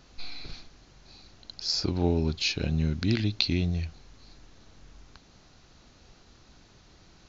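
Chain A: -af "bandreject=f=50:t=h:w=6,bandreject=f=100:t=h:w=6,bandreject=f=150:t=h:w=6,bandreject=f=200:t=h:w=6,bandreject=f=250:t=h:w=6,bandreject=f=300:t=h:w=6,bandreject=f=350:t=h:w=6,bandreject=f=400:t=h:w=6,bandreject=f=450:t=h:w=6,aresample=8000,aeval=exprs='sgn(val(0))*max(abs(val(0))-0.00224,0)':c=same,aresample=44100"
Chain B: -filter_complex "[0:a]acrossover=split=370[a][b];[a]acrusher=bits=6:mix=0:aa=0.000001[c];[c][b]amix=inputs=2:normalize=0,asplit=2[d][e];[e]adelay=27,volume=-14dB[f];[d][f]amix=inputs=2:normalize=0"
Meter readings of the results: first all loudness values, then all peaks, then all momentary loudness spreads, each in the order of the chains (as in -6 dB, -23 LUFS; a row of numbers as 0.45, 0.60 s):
-30.0, -28.0 LUFS; -11.0, -5.5 dBFS; 19, 16 LU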